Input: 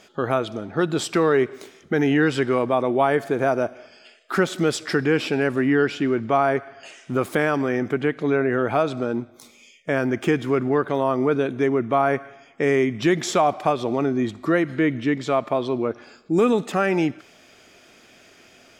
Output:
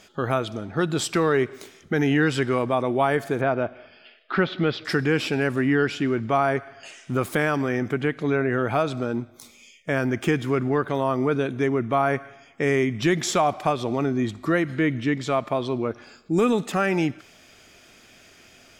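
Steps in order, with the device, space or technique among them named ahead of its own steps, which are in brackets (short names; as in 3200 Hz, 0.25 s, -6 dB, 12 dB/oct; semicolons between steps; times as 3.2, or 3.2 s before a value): 3.41–4.85 steep low-pass 4100 Hz 36 dB/oct; smiley-face EQ (low shelf 110 Hz +7.5 dB; bell 420 Hz -3.5 dB 2.4 oct; high shelf 7900 Hz +4 dB)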